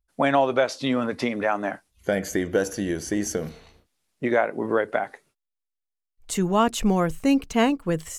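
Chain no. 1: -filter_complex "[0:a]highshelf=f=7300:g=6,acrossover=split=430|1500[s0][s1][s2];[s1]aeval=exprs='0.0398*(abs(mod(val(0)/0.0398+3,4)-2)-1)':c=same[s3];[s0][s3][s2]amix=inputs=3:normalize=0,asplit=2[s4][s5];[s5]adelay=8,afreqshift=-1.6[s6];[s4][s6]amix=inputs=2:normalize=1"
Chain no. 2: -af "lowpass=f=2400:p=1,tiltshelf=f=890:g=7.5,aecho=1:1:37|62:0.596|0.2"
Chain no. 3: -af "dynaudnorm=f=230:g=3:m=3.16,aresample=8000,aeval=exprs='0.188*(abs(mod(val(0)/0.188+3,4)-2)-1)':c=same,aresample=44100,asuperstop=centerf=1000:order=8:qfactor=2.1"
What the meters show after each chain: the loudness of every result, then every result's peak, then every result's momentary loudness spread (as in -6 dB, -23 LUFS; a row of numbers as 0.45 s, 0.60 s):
-30.0 LUFS, -19.0 LUFS, -23.0 LUFS; -14.0 dBFS, -2.5 dBFS, -9.0 dBFS; 9 LU, 12 LU, 5 LU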